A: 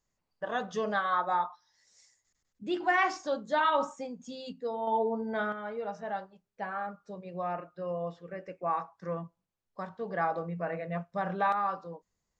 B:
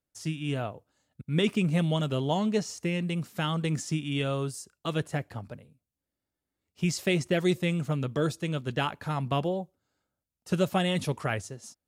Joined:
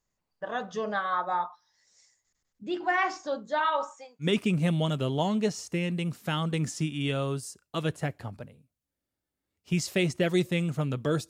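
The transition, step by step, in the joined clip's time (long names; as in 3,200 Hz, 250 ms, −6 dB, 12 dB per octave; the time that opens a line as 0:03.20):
A
0:03.47–0:04.29: high-pass filter 240 Hz → 1,400 Hz
0:04.24: continue with B from 0:01.35, crossfade 0.10 s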